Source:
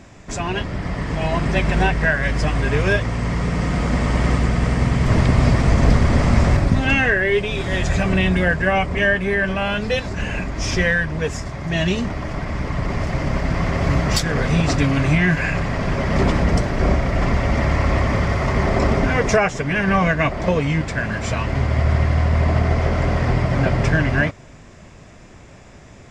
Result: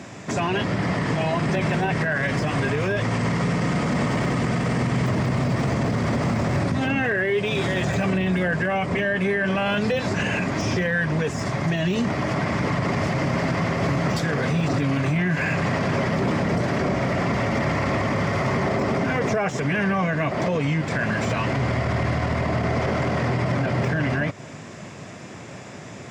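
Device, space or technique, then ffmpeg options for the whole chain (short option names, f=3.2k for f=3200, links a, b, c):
podcast mastering chain: -af "highpass=f=110:w=0.5412,highpass=f=110:w=1.3066,deesser=0.9,acompressor=threshold=-25dB:ratio=3,alimiter=limit=-21.5dB:level=0:latency=1:release=18,volume=7dB" -ar 44100 -c:a libmp3lame -b:a 112k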